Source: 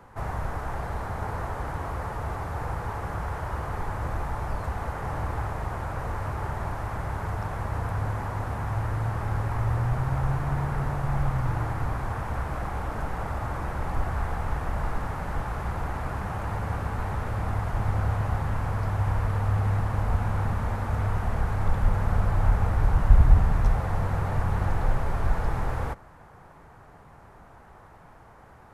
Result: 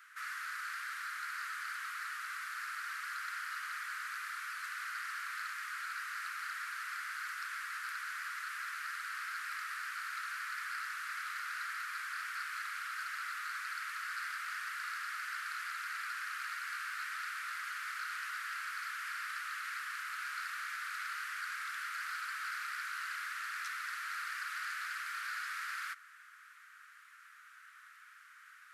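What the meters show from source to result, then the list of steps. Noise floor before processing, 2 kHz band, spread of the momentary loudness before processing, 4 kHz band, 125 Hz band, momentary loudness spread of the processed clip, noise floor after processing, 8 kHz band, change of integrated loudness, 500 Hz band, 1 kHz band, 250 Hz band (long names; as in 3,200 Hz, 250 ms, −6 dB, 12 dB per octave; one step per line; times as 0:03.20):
−51 dBFS, +2.5 dB, 7 LU, +4.5 dB, below −40 dB, 2 LU, −58 dBFS, can't be measured, −11.0 dB, below −40 dB, −9.5 dB, below −40 dB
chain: Butterworth high-pass 1,300 Hz 72 dB per octave
saturating transformer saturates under 2,800 Hz
level +3.5 dB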